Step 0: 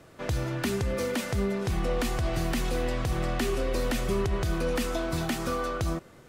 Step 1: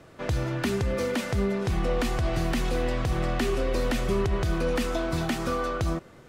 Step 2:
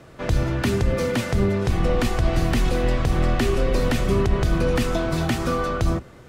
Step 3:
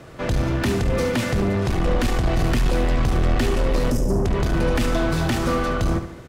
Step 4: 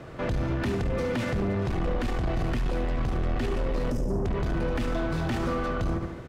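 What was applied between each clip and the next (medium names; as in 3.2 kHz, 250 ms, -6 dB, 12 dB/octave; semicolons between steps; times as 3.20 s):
treble shelf 7.5 kHz -7.5 dB; trim +2 dB
octave divider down 1 oct, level -1 dB; trim +4 dB
time-frequency box 3.91–4.26 s, 650–4900 Hz -26 dB; saturation -20.5 dBFS, distortion -11 dB; feedback delay 72 ms, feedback 46%, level -10.5 dB; trim +4 dB
treble shelf 4.8 kHz -11.5 dB; peak limiter -22 dBFS, peak gain reduction 9 dB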